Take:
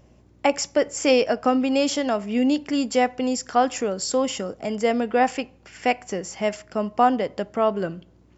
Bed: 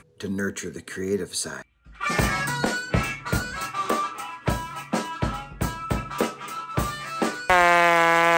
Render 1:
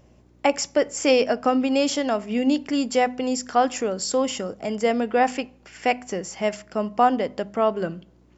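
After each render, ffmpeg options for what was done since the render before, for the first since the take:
-af "bandreject=f=50:t=h:w=4,bandreject=f=100:t=h:w=4,bandreject=f=150:t=h:w=4,bandreject=f=200:t=h:w=4,bandreject=f=250:t=h:w=4"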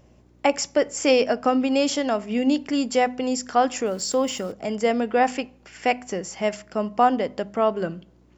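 -filter_complex "[0:a]asettb=1/sr,asplit=3[s0][s1][s2];[s0]atrim=end=3.864[s3];[s1]atrim=start=3.86:end=4.52,asetpts=PTS-STARTPTS,afade=t=in:d=0.004:c=qsin,afade=t=out:st=0.656:d=0.004:c=qsin,aeval=exprs='val(0)*gte(abs(val(0)),0.00708)':c=same[s4];[s2]atrim=start=4.516[s5];[s3][s4]acrossfade=d=0.004:c1=hsin:c2=qsin[s6];[s6][s5]acrossfade=d=0.004:c1=qsin:c2=hsin"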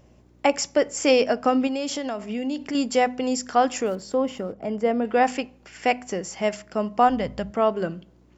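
-filter_complex "[0:a]asettb=1/sr,asplit=3[s0][s1][s2];[s0]atrim=end=1.674[s3];[s1]atrim=start=1.67:end=2.75,asetpts=PTS-STARTPTS,afade=t=in:d=0.004:c=qsin,afade=t=out:st=1.076:d=0.004:c=qsin,acompressor=threshold=0.0501:ratio=3:attack=3.2:release=140:knee=1:detection=peak[s4];[s2]atrim=start=2.746[s5];[s3][s4]acrossfade=d=0.004:c1=hsin:c2=qsin[s6];[s6][s5]acrossfade=d=0.004:c1=qsin:c2=hsin,asettb=1/sr,asplit=3[s7][s8][s9];[s7]atrim=end=3.954[s10];[s8]atrim=start=3.95:end=5.05,asetpts=PTS-STARTPTS,afade=t=in:d=0.004:c=qsin,afade=t=out:st=1.096:d=0.004:c=qsin,lowpass=f=1100:p=1[s11];[s9]atrim=start=5.046[s12];[s10][s11]acrossfade=d=0.004:c1=hsin:c2=qsin[s13];[s13][s12]acrossfade=d=0.004:c1=qsin:c2=hsin,asplit=3[s14][s15][s16];[s14]afade=t=out:st=7.08:d=0.02[s17];[s15]asubboost=boost=9:cutoff=110,afade=t=in:st=7.08:d=0.02,afade=t=out:st=7.5:d=0.02[s18];[s16]afade=t=in:st=7.5:d=0.02[s19];[s17][s18][s19]amix=inputs=3:normalize=0"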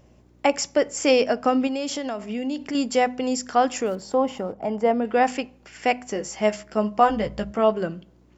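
-filter_complex "[0:a]asettb=1/sr,asplit=3[s0][s1][s2];[s0]atrim=end=4.024[s3];[s1]atrim=start=4.02:end=4.94,asetpts=PTS-STARTPTS,afade=t=in:d=0.004:c=qsin,afade=t=out:st=0.916:d=0.004:c=qsin,equalizer=f=850:t=o:w=0.57:g=10[s4];[s2]atrim=start=4.936[s5];[s3][s4]acrossfade=d=0.004:c1=hsin:c2=qsin[s6];[s6][s5]acrossfade=d=0.004:c1=qsin:c2=hsin,asettb=1/sr,asplit=3[s7][s8][s9];[s7]atrim=end=6.144[s10];[s8]atrim=start=6.14:end=7.78,asetpts=PTS-STARTPTS,afade=t=in:d=0.004:c=qsin,afade=t=out:st=1.636:d=0.004:c=qsin,asplit=2[s11][s12];[s12]adelay=14,volume=0.531[s13];[s11][s13]amix=inputs=2:normalize=0,atrim=end_sample=72324[s14];[s9]atrim=start=7.776[s15];[s10][s14]acrossfade=d=0.004:c1=hsin:c2=qsin[s16];[s16][s15]acrossfade=d=0.004:c1=qsin:c2=hsin"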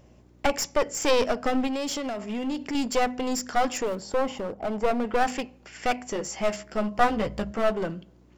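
-af "aeval=exprs='clip(val(0),-1,0.0398)':c=same"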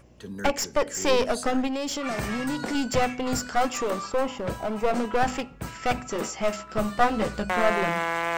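-filter_complex "[1:a]volume=0.355[s0];[0:a][s0]amix=inputs=2:normalize=0"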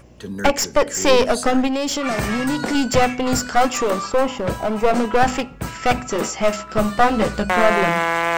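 -af "volume=2.37,alimiter=limit=0.794:level=0:latency=1"

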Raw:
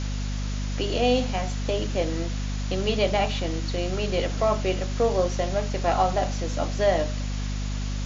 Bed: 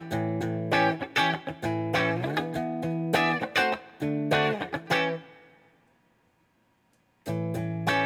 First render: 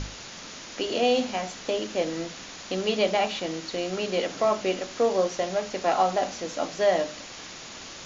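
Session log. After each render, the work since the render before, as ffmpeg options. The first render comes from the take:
-af "bandreject=f=50:t=h:w=6,bandreject=f=100:t=h:w=6,bandreject=f=150:t=h:w=6,bandreject=f=200:t=h:w=6,bandreject=f=250:t=h:w=6,bandreject=f=300:t=h:w=6"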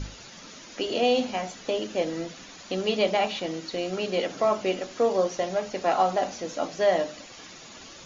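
-af "afftdn=nr=9:nf=-42"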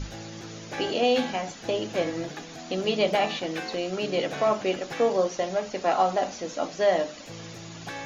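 -filter_complex "[1:a]volume=0.251[s0];[0:a][s0]amix=inputs=2:normalize=0"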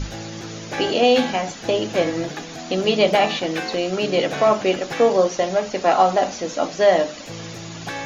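-af "volume=2.24"

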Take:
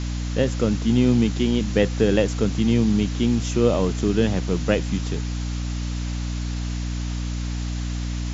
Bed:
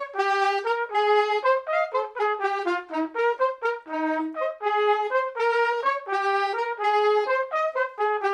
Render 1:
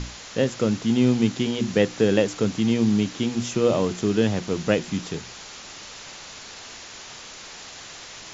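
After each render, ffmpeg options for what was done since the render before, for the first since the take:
-af "bandreject=f=60:t=h:w=6,bandreject=f=120:t=h:w=6,bandreject=f=180:t=h:w=6,bandreject=f=240:t=h:w=6,bandreject=f=300:t=h:w=6,bandreject=f=360:t=h:w=6"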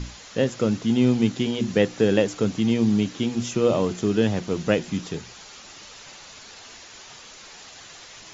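-af "afftdn=nr=6:nf=-41"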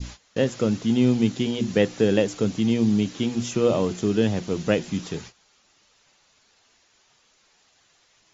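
-af "agate=range=0.126:threshold=0.0112:ratio=16:detection=peak,adynamicequalizer=threshold=0.0141:dfrequency=1300:dqfactor=0.75:tfrequency=1300:tqfactor=0.75:attack=5:release=100:ratio=0.375:range=2:mode=cutabove:tftype=bell"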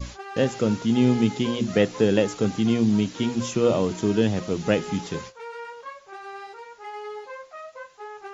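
-filter_complex "[1:a]volume=0.178[s0];[0:a][s0]amix=inputs=2:normalize=0"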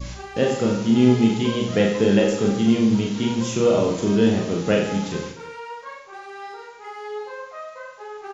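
-filter_complex "[0:a]asplit=2[s0][s1];[s1]adelay=35,volume=0.473[s2];[s0][s2]amix=inputs=2:normalize=0,aecho=1:1:40|90|152.5|230.6|328.3:0.631|0.398|0.251|0.158|0.1"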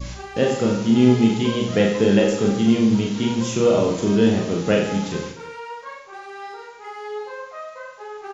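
-af "volume=1.12"

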